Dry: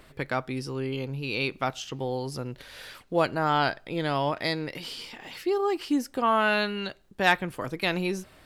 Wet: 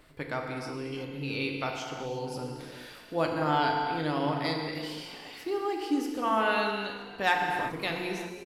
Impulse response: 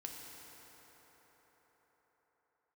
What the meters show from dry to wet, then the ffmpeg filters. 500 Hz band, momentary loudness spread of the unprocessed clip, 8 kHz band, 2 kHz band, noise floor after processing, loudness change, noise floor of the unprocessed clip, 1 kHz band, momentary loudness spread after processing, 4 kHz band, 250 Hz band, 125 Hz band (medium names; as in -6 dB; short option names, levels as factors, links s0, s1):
-3.5 dB, 13 LU, -3.5 dB, -3.0 dB, -48 dBFS, -2.5 dB, -56 dBFS, -1.5 dB, 12 LU, -3.5 dB, -2.0 dB, -4.0 dB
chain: -filter_complex "[0:a]bandreject=f=60:t=h:w=6,bandreject=f=120:t=h:w=6,bandreject=f=180:t=h:w=6,asplit=6[s0][s1][s2][s3][s4][s5];[s1]adelay=321,afreqshift=50,volume=0.1[s6];[s2]adelay=642,afreqshift=100,volume=0.0617[s7];[s3]adelay=963,afreqshift=150,volume=0.0385[s8];[s4]adelay=1284,afreqshift=200,volume=0.0237[s9];[s5]adelay=1605,afreqshift=250,volume=0.0148[s10];[s0][s6][s7][s8][s9][s10]amix=inputs=6:normalize=0[s11];[1:a]atrim=start_sample=2205,afade=t=out:st=0.43:d=0.01,atrim=end_sample=19404[s12];[s11][s12]afir=irnorm=-1:irlink=0"